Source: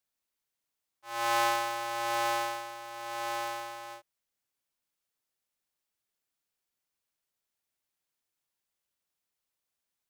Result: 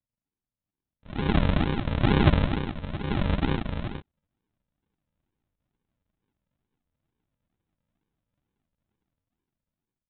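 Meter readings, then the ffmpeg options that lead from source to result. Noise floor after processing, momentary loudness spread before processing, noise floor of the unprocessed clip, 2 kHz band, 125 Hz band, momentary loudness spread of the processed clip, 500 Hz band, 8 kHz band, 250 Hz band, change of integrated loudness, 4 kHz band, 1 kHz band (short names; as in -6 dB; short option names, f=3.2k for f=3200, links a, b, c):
under -85 dBFS, 14 LU, under -85 dBFS, +0.5 dB, +31.5 dB, 13 LU, +4.5 dB, under -35 dB, +21.0 dB, +6.0 dB, +1.5 dB, -3.5 dB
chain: -af "dynaudnorm=f=610:g=5:m=12.5dB,aresample=8000,acrusher=samples=17:mix=1:aa=0.000001:lfo=1:lforange=10.2:lforate=2.2,aresample=44100"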